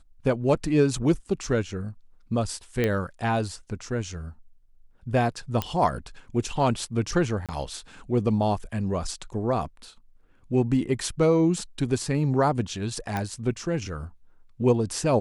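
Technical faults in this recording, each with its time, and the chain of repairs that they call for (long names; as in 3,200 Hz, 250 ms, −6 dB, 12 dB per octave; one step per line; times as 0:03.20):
0:02.84: click −12 dBFS
0:05.62: click −11 dBFS
0:07.46–0:07.49: drop-out 27 ms
0:13.17: click −15 dBFS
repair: click removal
repair the gap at 0:07.46, 27 ms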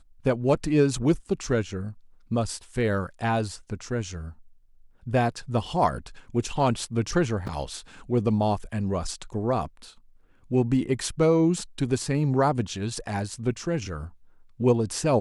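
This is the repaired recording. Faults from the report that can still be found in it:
0:05.62: click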